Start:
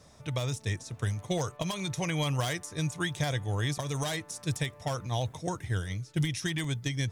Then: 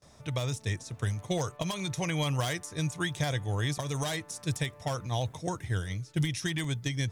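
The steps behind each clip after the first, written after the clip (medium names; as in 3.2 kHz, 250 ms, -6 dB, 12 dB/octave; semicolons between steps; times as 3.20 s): gate with hold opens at -48 dBFS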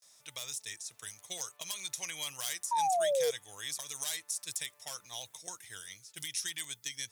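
differentiator; painted sound fall, 2.71–3.31 s, 450–970 Hz -33 dBFS; trim +4 dB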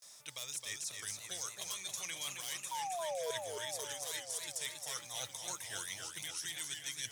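reverse; compression 10:1, threshold -44 dBFS, peak gain reduction 17 dB; reverse; modulated delay 271 ms, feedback 68%, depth 140 cents, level -5.5 dB; trim +5.5 dB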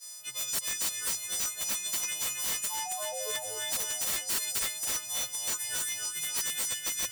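partials quantised in pitch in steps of 3 st; integer overflow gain 23.5 dB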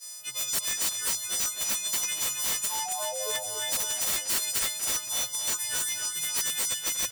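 speakerphone echo 240 ms, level -8 dB; trim +3 dB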